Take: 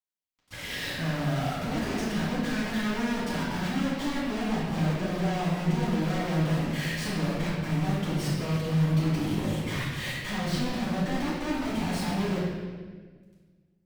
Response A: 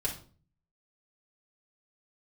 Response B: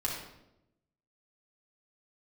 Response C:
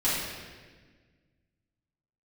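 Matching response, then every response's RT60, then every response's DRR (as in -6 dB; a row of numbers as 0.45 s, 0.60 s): C; 0.45 s, 0.85 s, 1.5 s; -5.0 dB, -3.5 dB, -10.5 dB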